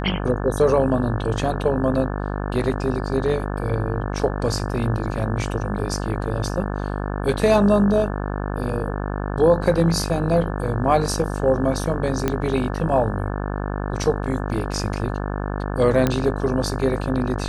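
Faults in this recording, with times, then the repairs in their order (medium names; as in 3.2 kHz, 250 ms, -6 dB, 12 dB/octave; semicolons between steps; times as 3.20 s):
buzz 50 Hz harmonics 35 -26 dBFS
12.28 s: pop -7 dBFS
16.07 s: pop -6 dBFS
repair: de-click; de-hum 50 Hz, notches 35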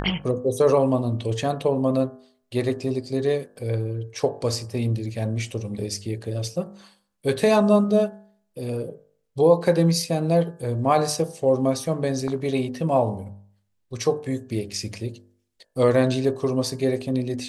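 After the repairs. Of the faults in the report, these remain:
nothing left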